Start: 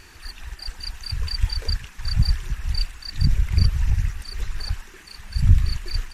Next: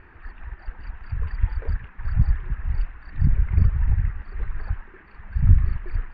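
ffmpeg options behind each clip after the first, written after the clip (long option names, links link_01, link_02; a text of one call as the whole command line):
ffmpeg -i in.wav -af "lowpass=frequency=1900:width=0.5412,lowpass=frequency=1900:width=1.3066" out.wav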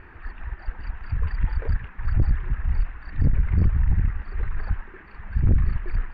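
ffmpeg -i in.wav -af "aeval=exprs='(tanh(7.08*val(0)+0.3)-tanh(0.3))/7.08':channel_layout=same,volume=4dB" out.wav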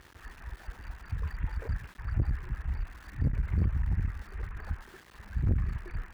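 ffmpeg -i in.wav -af "aeval=exprs='val(0)*gte(abs(val(0)),0.00708)':channel_layout=same,highpass=44,volume=-6.5dB" out.wav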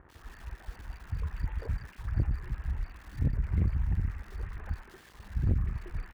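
ffmpeg -i in.wav -filter_complex "[0:a]acrossover=split=1600[link_01][link_02];[link_02]adelay=90[link_03];[link_01][link_03]amix=inputs=2:normalize=0" out.wav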